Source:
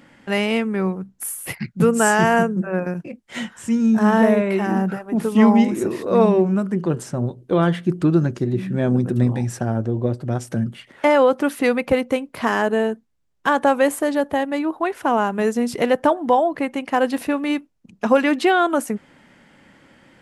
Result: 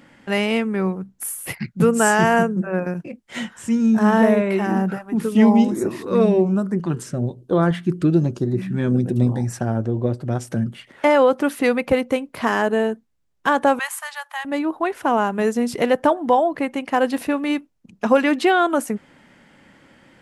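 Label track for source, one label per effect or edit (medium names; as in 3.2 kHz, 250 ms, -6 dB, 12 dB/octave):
4.980000	9.610000	LFO notch saw up 1.1 Hz 390–3600 Hz
13.790000	14.450000	steep high-pass 920 Hz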